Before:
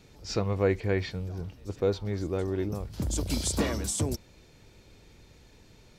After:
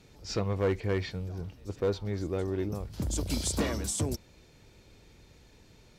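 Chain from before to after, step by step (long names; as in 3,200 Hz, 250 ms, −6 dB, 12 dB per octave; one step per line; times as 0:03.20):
asymmetric clip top −20.5 dBFS
level −1.5 dB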